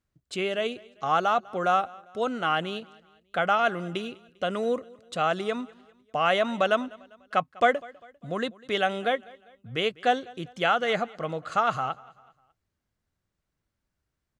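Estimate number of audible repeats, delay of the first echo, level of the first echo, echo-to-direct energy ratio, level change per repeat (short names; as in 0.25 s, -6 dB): 2, 0.199 s, -23.0 dB, -22.0 dB, -7.0 dB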